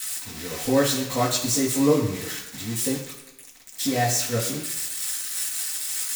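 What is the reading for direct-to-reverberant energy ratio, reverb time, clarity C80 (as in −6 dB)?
−14.0 dB, 1.0 s, 8.0 dB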